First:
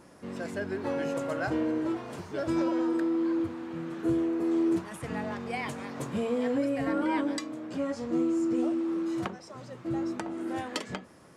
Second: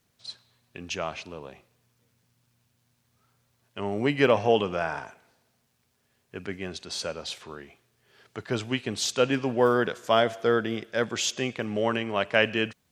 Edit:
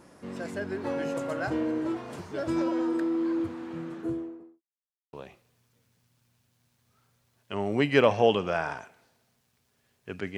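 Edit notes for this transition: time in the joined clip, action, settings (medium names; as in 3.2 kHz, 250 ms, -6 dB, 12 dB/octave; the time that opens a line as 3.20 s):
first
3.70–4.62 s: studio fade out
4.62–5.13 s: mute
5.13 s: go over to second from 1.39 s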